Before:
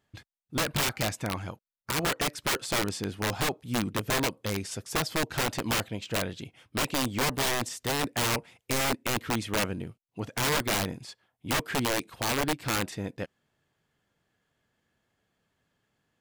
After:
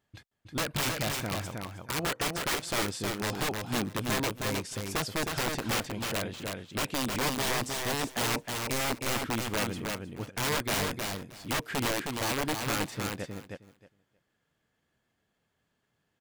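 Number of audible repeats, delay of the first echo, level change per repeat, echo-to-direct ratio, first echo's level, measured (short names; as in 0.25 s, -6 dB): 2, 0.314 s, -16.0 dB, -4.0 dB, -4.0 dB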